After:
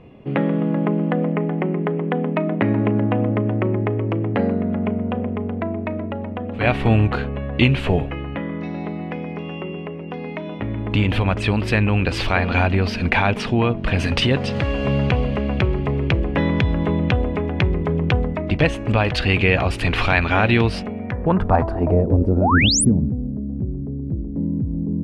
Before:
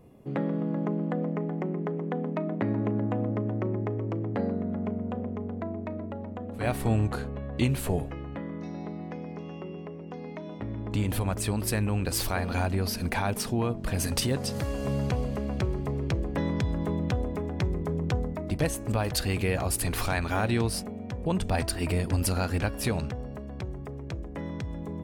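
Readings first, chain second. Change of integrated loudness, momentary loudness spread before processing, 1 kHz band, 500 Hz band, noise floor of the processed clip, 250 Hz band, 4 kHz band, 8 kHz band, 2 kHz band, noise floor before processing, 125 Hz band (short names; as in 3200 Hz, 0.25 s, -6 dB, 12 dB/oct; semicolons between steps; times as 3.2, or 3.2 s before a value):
+9.5 dB, 10 LU, +10.5 dB, +9.5 dB, -30 dBFS, +9.5 dB, +10.5 dB, +5.0 dB, +13.5 dB, -39 dBFS, +9.0 dB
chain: low-pass sweep 2800 Hz -> 250 Hz, 20.87–22.63; painted sound rise, 22.41–22.85, 530–11000 Hz -27 dBFS; gain +9 dB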